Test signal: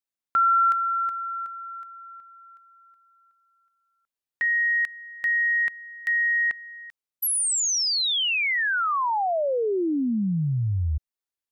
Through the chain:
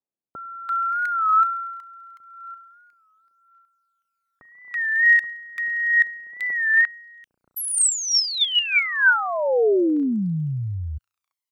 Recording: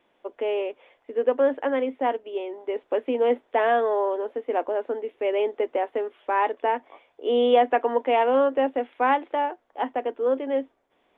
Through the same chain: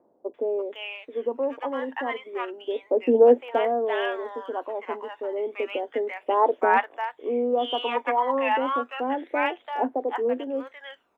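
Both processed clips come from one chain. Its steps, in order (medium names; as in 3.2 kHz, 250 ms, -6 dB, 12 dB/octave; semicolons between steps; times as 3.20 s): phaser 0.31 Hz, delay 1.1 ms, feedback 64%; dynamic bell 1.5 kHz, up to +4 dB, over -33 dBFS, Q 2.7; high-pass 260 Hz 6 dB/octave; bands offset in time lows, highs 340 ms, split 900 Hz; warped record 33 1/3 rpm, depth 100 cents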